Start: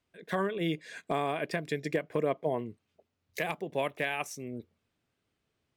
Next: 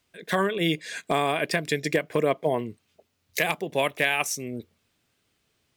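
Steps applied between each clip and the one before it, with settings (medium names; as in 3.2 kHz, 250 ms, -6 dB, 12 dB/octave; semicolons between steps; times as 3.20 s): treble shelf 2.3 kHz +9 dB; trim +5.5 dB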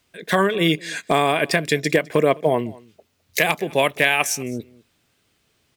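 delay 208 ms -23 dB; trim +6 dB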